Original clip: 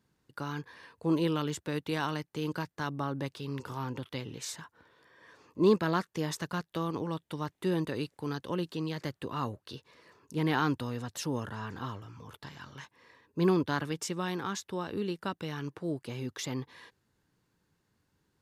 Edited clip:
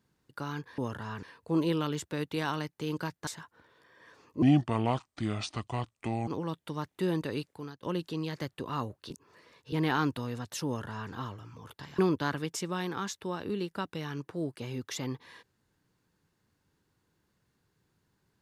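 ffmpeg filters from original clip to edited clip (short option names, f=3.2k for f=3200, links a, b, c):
-filter_complex "[0:a]asplit=10[a][b][c][d][e][f][g][h][i][j];[a]atrim=end=0.782[k];[b]atrim=start=11.298:end=11.752[l];[c]atrim=start=0.778:end=2.822[m];[d]atrim=start=4.478:end=5.634[n];[e]atrim=start=5.63:end=6.91,asetpts=PTS-STARTPTS,asetrate=30429,aresample=44100[o];[f]atrim=start=6.906:end=8.46,asetpts=PTS-STARTPTS,afade=t=out:st=1.144:d=0.41:silence=0.0749894[p];[g]atrim=start=8.46:end=9.742,asetpts=PTS-STARTPTS,afade=t=in:d=0.004:c=hsin:silence=0.0749894[q];[h]atrim=start=9.738:end=10.362,asetpts=PTS-STARTPTS,areverse[r];[i]atrim=start=10.358:end=12.622[s];[j]atrim=start=13.458[t];[k][l]acrossfade=d=0.004:c1=hsin:c2=hsin[u];[u][m]acrossfade=d=0.004:c1=hsin:c2=hsin[v];[v][n]acrossfade=d=0.004:c1=hsin:c2=hsin[w];[w][o]acrossfade=d=0.004:c1=hsin:c2=hsin[x];[p][q]concat=n=2:v=0:a=1[y];[x][y]acrossfade=d=0.004:c1=hsin:c2=hsin[z];[z][r]acrossfade=d=0.004:c1=hsin:c2=hsin[aa];[aa][s]acrossfade=d=0.004:c1=hsin:c2=hsin[ab];[ab][t]acrossfade=d=0.004:c1=hsin:c2=hsin"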